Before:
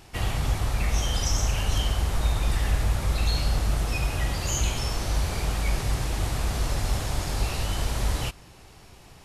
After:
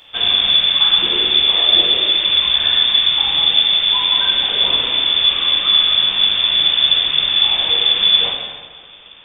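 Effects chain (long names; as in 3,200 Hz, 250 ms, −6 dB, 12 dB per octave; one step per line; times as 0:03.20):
in parallel at −8 dB: bit reduction 7 bits
on the sum: voice inversion scrambler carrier 3,500 Hz
dense smooth reverb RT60 1.6 s, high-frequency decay 0.75×, DRR −1.5 dB
level +2.5 dB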